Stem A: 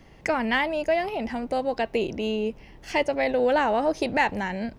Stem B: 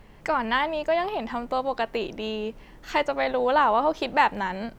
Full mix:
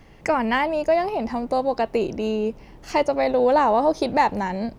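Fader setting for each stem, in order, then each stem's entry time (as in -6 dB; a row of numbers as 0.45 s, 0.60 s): +0.5 dB, -4.5 dB; 0.00 s, 0.00 s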